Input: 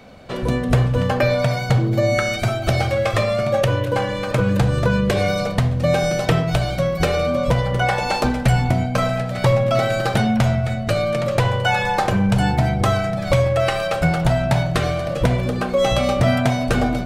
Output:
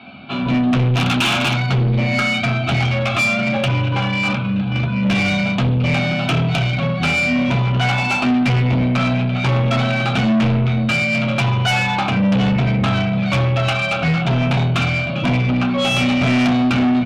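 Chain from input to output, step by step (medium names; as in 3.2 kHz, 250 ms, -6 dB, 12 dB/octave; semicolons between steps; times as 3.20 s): 0.94–1.64 s: integer overflow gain 12.5 dB; delay 81 ms -18.5 dB; 4.25–5.03 s: compressor with a negative ratio -21 dBFS, ratio -0.5; cabinet simulation 220–3600 Hz, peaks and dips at 400 Hz -5 dB, 1 kHz -9 dB, 2.4 kHz +8 dB; static phaser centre 1.9 kHz, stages 6; reverberation RT60 0.30 s, pre-delay 3 ms, DRR 0.5 dB; saturation -21 dBFS, distortion -10 dB; trim +8 dB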